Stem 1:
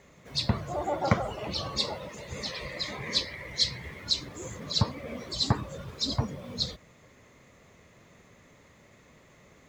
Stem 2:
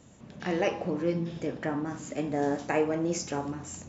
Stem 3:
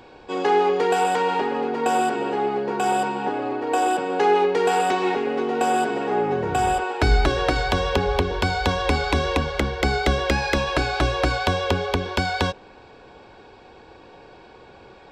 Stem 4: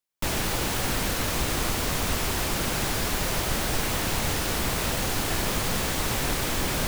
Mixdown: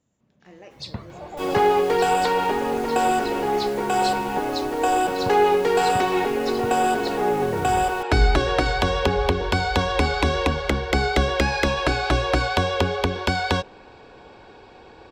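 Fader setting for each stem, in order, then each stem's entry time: -6.5, -18.0, +0.5, -15.0 dB; 0.45, 0.00, 1.10, 1.15 s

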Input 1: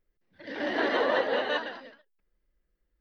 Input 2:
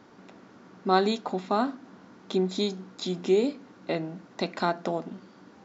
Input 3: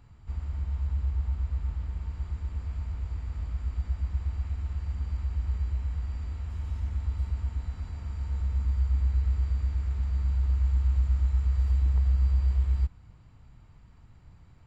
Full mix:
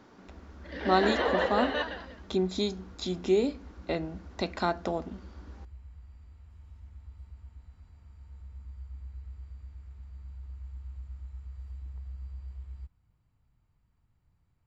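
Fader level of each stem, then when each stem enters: -2.0, -2.0, -17.5 dB; 0.25, 0.00, 0.00 s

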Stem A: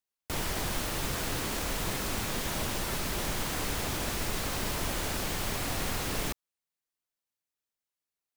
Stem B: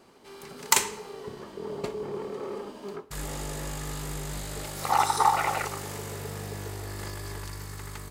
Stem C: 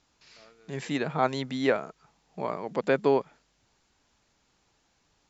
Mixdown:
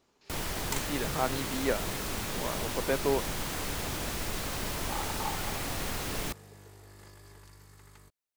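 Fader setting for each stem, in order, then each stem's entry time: -2.0, -15.5, -5.5 dB; 0.00, 0.00, 0.00 s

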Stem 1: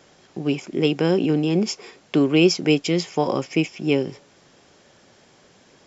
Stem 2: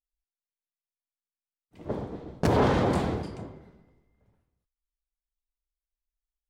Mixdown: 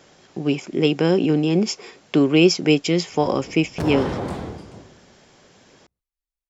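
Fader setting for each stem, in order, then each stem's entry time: +1.5, -2.5 dB; 0.00, 1.35 s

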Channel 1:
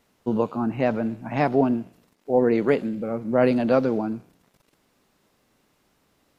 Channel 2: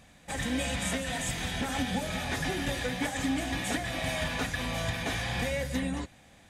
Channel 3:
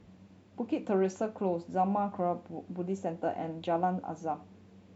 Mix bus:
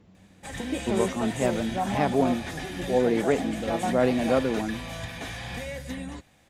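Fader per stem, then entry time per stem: -3.5, -4.0, -0.5 dB; 0.60, 0.15, 0.00 s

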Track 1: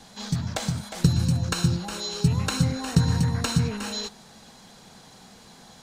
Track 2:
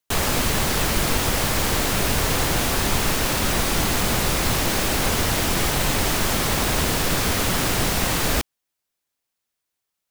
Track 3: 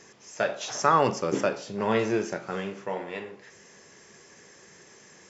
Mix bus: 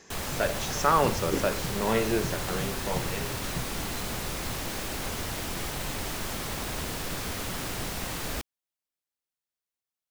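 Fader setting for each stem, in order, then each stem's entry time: -16.0, -12.0, -1.5 dB; 0.00, 0.00, 0.00 s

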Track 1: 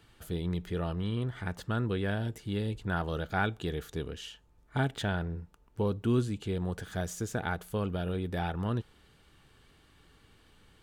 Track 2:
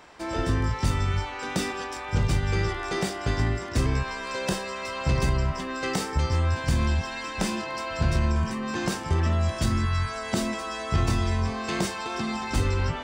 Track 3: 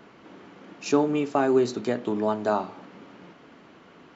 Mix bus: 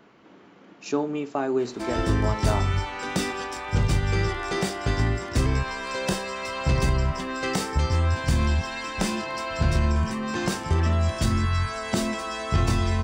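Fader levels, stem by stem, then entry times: off, +1.5 dB, -4.0 dB; off, 1.60 s, 0.00 s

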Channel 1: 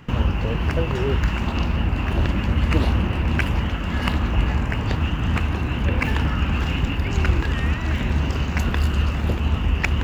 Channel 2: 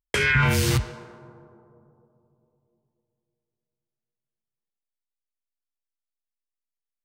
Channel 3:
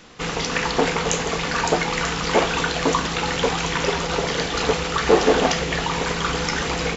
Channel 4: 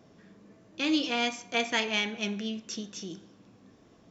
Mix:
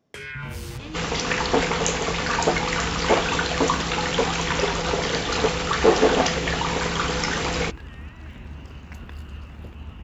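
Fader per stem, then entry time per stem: -17.0, -14.5, -1.0, -12.5 dB; 0.35, 0.00, 0.75, 0.00 s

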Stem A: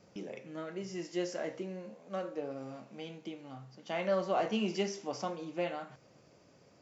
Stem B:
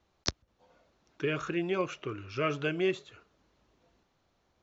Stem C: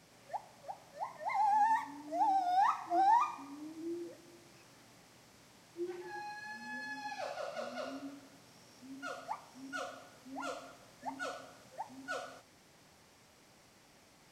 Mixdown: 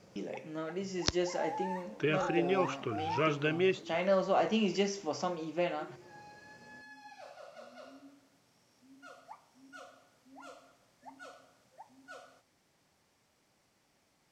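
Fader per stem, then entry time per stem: +2.5, 0.0, -9.5 dB; 0.00, 0.80, 0.00 s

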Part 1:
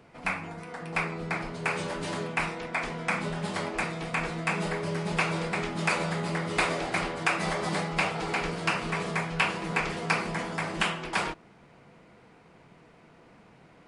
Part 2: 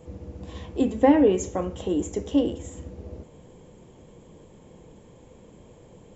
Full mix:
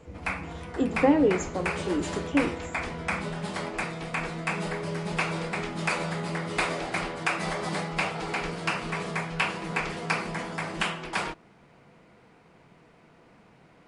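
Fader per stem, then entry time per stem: -1.0, -3.5 dB; 0.00, 0.00 s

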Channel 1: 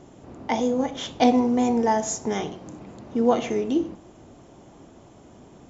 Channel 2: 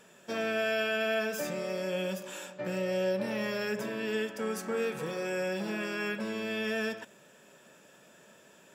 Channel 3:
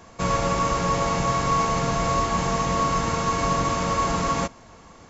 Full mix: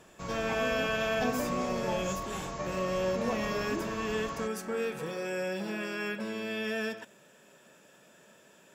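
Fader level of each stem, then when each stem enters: -15.5, -1.0, -15.5 dB; 0.00, 0.00, 0.00 s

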